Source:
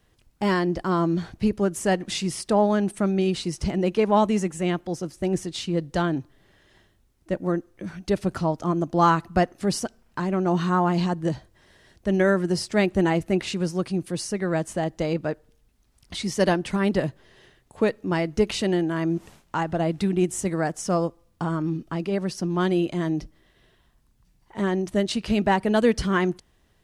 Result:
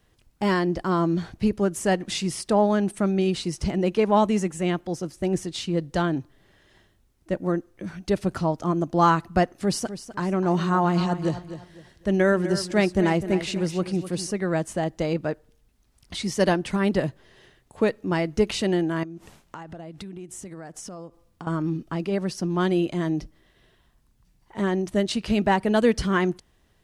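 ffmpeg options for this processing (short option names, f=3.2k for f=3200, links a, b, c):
-filter_complex "[0:a]asettb=1/sr,asplit=3[a][b][c];[a]atrim=end=9.584[d];[b]atrim=start=9.58:end=14.31,asetpts=PTS-STARTPTS,afade=t=in:d=0.004:c=qsin,afade=t=out:st=4.726:d=0.004:c=qsin,aecho=1:1:253|506|759:0.251|0.0754|0.0226,atrim=end_sample=208593[e];[c]atrim=start=14.306[f];[d][e]acrossfade=d=0.004:c1=hsin:c2=qsin[g];[g][f]acrossfade=d=0.004:c1=qsin:c2=hsin,asettb=1/sr,asplit=3[h][i][j];[h]atrim=end=19.034[k];[i]atrim=start=19.03:end=21.47,asetpts=PTS-STARTPTS,afade=t=in:d=0.004:c=qsin,afade=t=out:st=2.436:d=0.004:c=qsin,acompressor=threshold=-35dB:ratio=10:attack=3.2:release=140:knee=1:detection=peak[l];[j]atrim=start=21.466[m];[k][l]acrossfade=d=0.004:c1=hsin:c2=qsin[n];[n][m]acrossfade=d=0.004:c1=qsin:c2=hsin"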